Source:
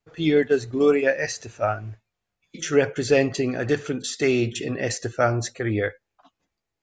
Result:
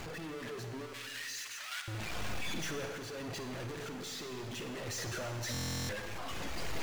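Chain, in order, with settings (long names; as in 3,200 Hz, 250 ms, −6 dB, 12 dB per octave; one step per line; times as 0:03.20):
sign of each sample alone
low-pass filter 4,000 Hz 6 dB per octave
reverb reduction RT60 0.52 s
0:00.93–0:01.88: Bessel high-pass filter 2,100 Hz, order 4
output level in coarse steps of 23 dB
sample-and-hold tremolo
four-comb reverb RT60 1.7 s, DRR 5 dB
buffer that repeats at 0:05.52, samples 1,024, times 15
level +7 dB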